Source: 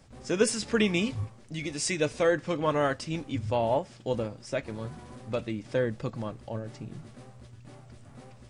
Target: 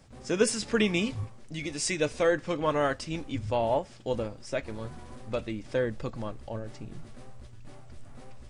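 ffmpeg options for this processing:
ffmpeg -i in.wav -af "asubboost=boost=5.5:cutoff=52" out.wav

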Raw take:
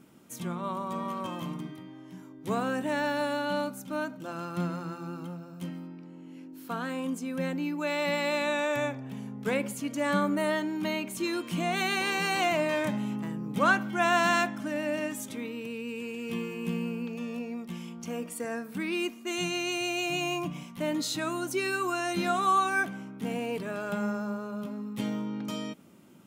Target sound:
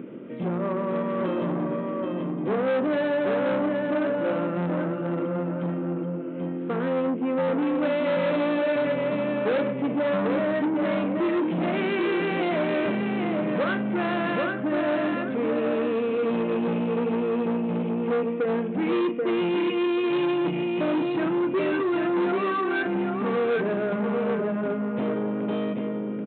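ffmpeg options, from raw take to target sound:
ffmpeg -i in.wav -filter_complex "[0:a]acompressor=threshold=-31dB:ratio=2,lowpass=frequency=2600:width=0.5412,lowpass=frequency=2600:width=1.3066,acompressor=mode=upward:threshold=-45dB:ratio=2.5,lowshelf=frequency=640:width_type=q:width=3:gain=6.5,asplit=2[link_01][link_02];[link_02]adelay=40,volume=-10dB[link_03];[link_01][link_03]amix=inputs=2:normalize=0,aecho=1:1:785|1570|2355:0.596|0.149|0.0372,aresample=8000,asoftclip=type=tanh:threshold=-27.5dB,aresample=44100,highpass=200,volume=7dB" out.wav

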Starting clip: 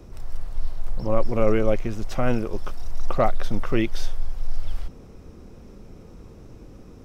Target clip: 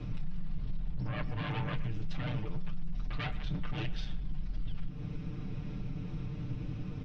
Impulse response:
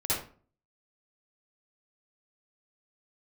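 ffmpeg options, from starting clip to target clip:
-filter_complex "[0:a]aeval=exprs='0.531*sin(PI/2*5.62*val(0)/0.531)':channel_layout=same,firequalizer=gain_entry='entry(120,0);entry(380,-23);entry(2600,-15)':delay=0.05:min_phase=1,tremolo=f=170:d=0.182,aeval=exprs='0.562*(cos(1*acos(clip(val(0)/0.562,-1,1)))-cos(1*PI/2))+0.01*(cos(7*acos(clip(val(0)/0.562,-1,1)))-cos(7*PI/2))':channel_layout=same,lowpass=frequency=3500:width=0.5412,lowpass=frequency=3500:width=1.3066,aemphasis=mode=production:type=bsi,alimiter=level_in=1dB:limit=-24dB:level=0:latency=1:release=37,volume=-1dB,flanger=delay=8.1:depth=9.2:regen=-60:speed=1.3:shape=triangular,acompressor=threshold=-40dB:ratio=6,aecho=1:1:6.7:0.99,asplit=2[link_01][link_02];[link_02]adelay=120,highpass=300,lowpass=3400,asoftclip=type=hard:threshold=-38.5dB,volume=-15dB[link_03];[link_01][link_03]amix=inputs=2:normalize=0,volume=5.5dB"

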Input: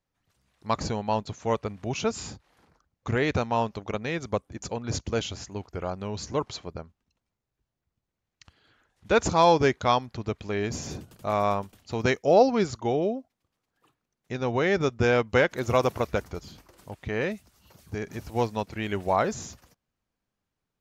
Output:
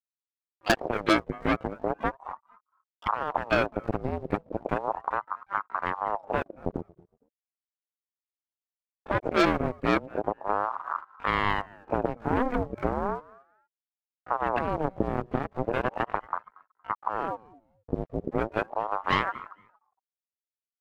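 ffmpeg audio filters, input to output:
ffmpeg -i in.wav -filter_complex "[0:a]highpass=frequency=40:poles=1,afftfilt=real='re*gte(hypot(re,im),0.0501)':imag='im*gte(hypot(re,im),0.0501)':win_size=1024:overlap=0.75,asubboost=boost=7:cutoff=230,acompressor=threshold=-28dB:ratio=8,lowpass=frequency=970:width_type=q:width=8.4,aeval=exprs='sgn(val(0))*max(abs(val(0))-0.00251,0)':channel_layout=same,asplit=2[link_01][link_02];[link_02]asetrate=88200,aresample=44100,atempo=0.5,volume=-13dB[link_03];[link_01][link_03]amix=inputs=2:normalize=0,aeval=exprs='sgn(val(0))*max(abs(val(0))-0.00133,0)':channel_layout=same,aecho=1:1:232|464:0.112|0.0247,aeval=exprs='0.224*(cos(1*acos(clip(val(0)/0.224,-1,1)))-cos(1*PI/2))+0.00141*(cos(2*acos(clip(val(0)/0.224,-1,1)))-cos(2*PI/2))+0.1*(cos(4*acos(clip(val(0)/0.224,-1,1)))-cos(4*PI/2))+0.0112*(cos(6*acos(clip(val(0)/0.224,-1,1)))-cos(6*PI/2))+0.0224*(cos(8*acos(clip(val(0)/0.224,-1,1)))-cos(8*PI/2))':channel_layout=same,aeval=exprs='val(0)*sin(2*PI*720*n/s+720*0.65/0.36*sin(2*PI*0.36*n/s))':channel_layout=same" out.wav

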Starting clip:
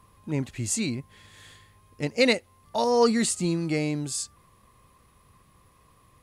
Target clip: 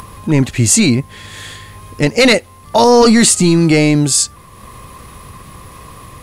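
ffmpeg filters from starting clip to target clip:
ffmpeg -i in.wav -af "apsyclip=22.5dB,acompressor=mode=upward:threshold=-23dB:ratio=2.5,volume=-4dB" out.wav

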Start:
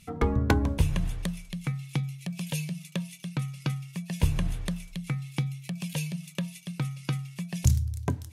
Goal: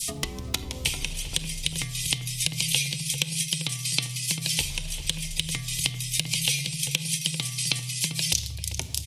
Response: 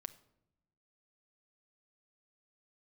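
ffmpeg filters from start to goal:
-filter_complex "[0:a]bandreject=frequency=60:width_type=h:width=6,bandreject=frequency=120:width_type=h:width=6,bandreject=frequency=180:width_type=h:width=6,asetrate=40517,aresample=44100,asplit=2[link_01][link_02];[link_02]adelay=393,lowpass=frequency=1100:poles=1,volume=-9dB,asplit=2[link_03][link_04];[link_04]adelay=393,lowpass=frequency=1100:poles=1,volume=0.44,asplit=2[link_05][link_06];[link_06]adelay=393,lowpass=frequency=1100:poles=1,volume=0.44,asplit=2[link_07][link_08];[link_08]adelay=393,lowpass=frequency=1100:poles=1,volume=0.44,asplit=2[link_09][link_10];[link_10]adelay=393,lowpass=frequency=1100:poles=1,volume=0.44[link_11];[link_01][link_03][link_05][link_07][link_09][link_11]amix=inputs=6:normalize=0,acrossover=split=370|3500[link_12][link_13][link_14];[link_12]acompressor=threshold=-37dB:ratio=4[link_15];[link_13]acompressor=threshold=-37dB:ratio=4[link_16];[link_14]acompressor=threshold=-57dB:ratio=4[link_17];[link_15][link_16][link_17]amix=inputs=3:normalize=0,lowshelf=frequency=96:gain=8[link_18];[1:a]atrim=start_sample=2205[link_19];[link_18][link_19]afir=irnorm=-1:irlink=0,acompressor=threshold=-39dB:ratio=6,aexciter=amount=7.3:drive=9.8:freq=2400,adynamicequalizer=threshold=0.00316:dfrequency=2300:dqfactor=2.3:tfrequency=2300:tqfactor=2.3:attack=5:release=100:ratio=0.375:range=2.5:mode=cutabove:tftype=bell,volume=7.5dB"

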